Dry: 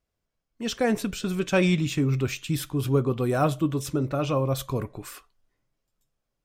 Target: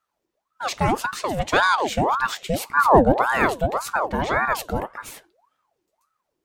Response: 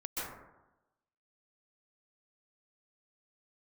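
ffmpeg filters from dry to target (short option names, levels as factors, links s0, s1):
-filter_complex "[0:a]asettb=1/sr,asplit=3[s0][s1][s2];[s0]atrim=end=2.774[s3];[s1]atrim=start=2.77:end=3.22,asetpts=PTS-STARTPTS,afade=t=in:d=0.004:c=qsin,afade=t=out:st=0.446:d=0.004:c=qsin,equalizer=f=92:w=0.44:g=9.5[s4];[s2]atrim=start=3.216[s5];[s3][s4]acrossfade=d=0.004:c1=hsin:c2=qsin[s6];[s6][s5]acrossfade=d=0.004:c1=qsin:c2=hsin,aeval=exprs='val(0)*sin(2*PI*820*n/s+820*0.6/1.8*sin(2*PI*1.8*n/s))':c=same,volume=1.88"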